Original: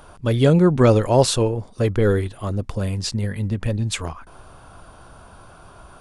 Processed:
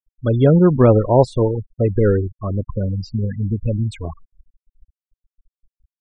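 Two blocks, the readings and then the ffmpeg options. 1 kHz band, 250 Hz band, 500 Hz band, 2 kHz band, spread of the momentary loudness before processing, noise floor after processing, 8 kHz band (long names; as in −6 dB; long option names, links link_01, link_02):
+1.0 dB, +2.5 dB, +2.5 dB, −5.0 dB, 12 LU, below −85 dBFS, below −15 dB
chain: -filter_complex "[0:a]afftfilt=real='re*gte(hypot(re,im),0.1)':imag='im*gte(hypot(re,im),0.1)':win_size=1024:overlap=0.75,acrossover=split=1500[link_01][link_02];[link_02]acompressor=threshold=-43dB:ratio=6[link_03];[link_01][link_03]amix=inputs=2:normalize=0,volume=2.5dB"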